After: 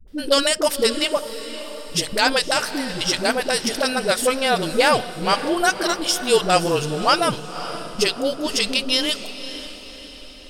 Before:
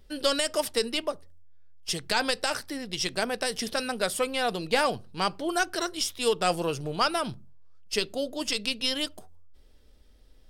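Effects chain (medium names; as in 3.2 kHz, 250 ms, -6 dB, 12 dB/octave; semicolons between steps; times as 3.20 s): peaking EQ 87 Hz -5 dB 0.36 oct; phase dispersion highs, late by 79 ms, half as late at 320 Hz; on a send: echo that smears into a reverb 544 ms, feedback 51%, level -12.5 dB; on the sum: trim +8 dB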